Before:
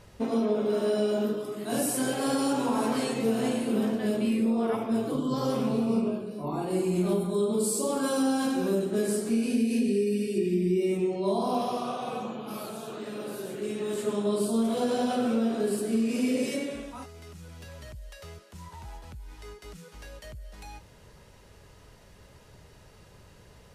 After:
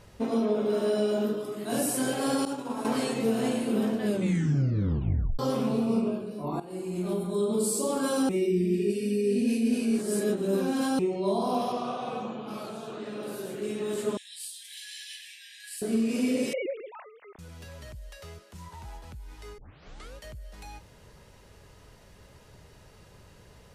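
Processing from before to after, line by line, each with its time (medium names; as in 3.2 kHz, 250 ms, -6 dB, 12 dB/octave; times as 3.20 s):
2.45–2.85 s: expander -21 dBFS
4.07 s: tape stop 1.32 s
6.60–7.52 s: fade in, from -13.5 dB
8.29–10.99 s: reverse
11.72–13.23 s: distance through air 53 m
14.17–15.82 s: brick-wall FIR high-pass 1.6 kHz
16.53–17.39 s: formants replaced by sine waves
19.58 s: tape start 0.58 s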